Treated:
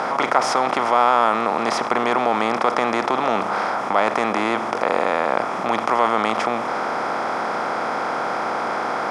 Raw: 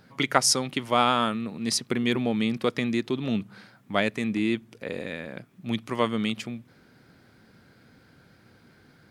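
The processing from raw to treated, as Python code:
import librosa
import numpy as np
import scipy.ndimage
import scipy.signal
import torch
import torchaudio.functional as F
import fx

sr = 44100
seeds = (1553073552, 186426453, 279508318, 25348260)

y = fx.bin_compress(x, sr, power=0.4)
y = fx.bandpass_q(y, sr, hz=910.0, q=1.7)
y = fx.env_flatten(y, sr, amount_pct=50)
y = F.gain(torch.from_numpy(y), 4.0).numpy()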